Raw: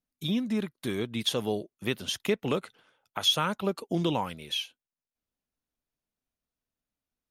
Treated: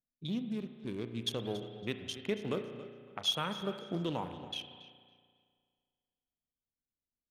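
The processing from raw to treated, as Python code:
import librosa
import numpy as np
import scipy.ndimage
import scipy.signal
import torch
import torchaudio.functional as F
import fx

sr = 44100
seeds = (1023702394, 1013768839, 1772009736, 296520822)

p1 = fx.wiener(x, sr, points=41)
p2 = p1 + fx.echo_feedback(p1, sr, ms=280, feedback_pct=26, wet_db=-15.0, dry=0)
p3 = fx.rev_spring(p2, sr, rt60_s=2.0, pass_ms=(34,), chirp_ms=60, drr_db=8.0)
p4 = fx.env_lowpass(p3, sr, base_hz=2500.0, full_db=-27.5)
y = p4 * librosa.db_to_amplitude(-7.0)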